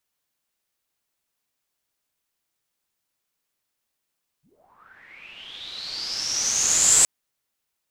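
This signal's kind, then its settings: swept filtered noise white, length 2.62 s lowpass, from 110 Hz, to 7.8 kHz, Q 11, linear, gain ramp +37 dB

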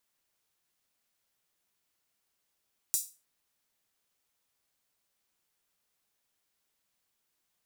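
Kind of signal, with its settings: open hi-hat length 0.31 s, high-pass 7.1 kHz, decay 0.31 s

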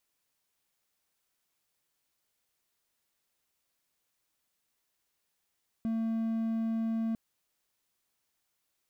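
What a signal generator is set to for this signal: tone triangle 225 Hz -26.5 dBFS 1.30 s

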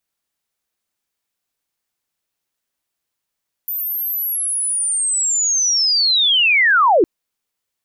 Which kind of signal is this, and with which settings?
sweep linear 14 kHz -> 300 Hz -20.5 dBFS -> -9 dBFS 3.36 s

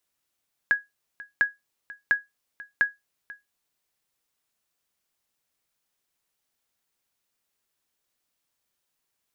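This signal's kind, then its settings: sonar ping 1.66 kHz, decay 0.18 s, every 0.70 s, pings 4, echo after 0.49 s, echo -20 dB -12 dBFS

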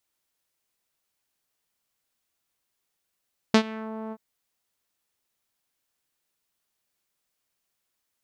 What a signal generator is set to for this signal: synth note saw A3 12 dB/octave, low-pass 950 Hz, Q 1.4, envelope 2.5 oct, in 0.36 s, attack 3.9 ms, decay 0.08 s, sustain -21 dB, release 0.05 s, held 0.58 s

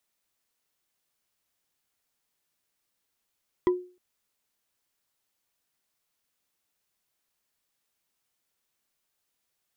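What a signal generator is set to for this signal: wood hit bar, length 0.31 s, lowest mode 361 Hz, decay 0.37 s, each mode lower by 8.5 dB, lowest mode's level -16 dB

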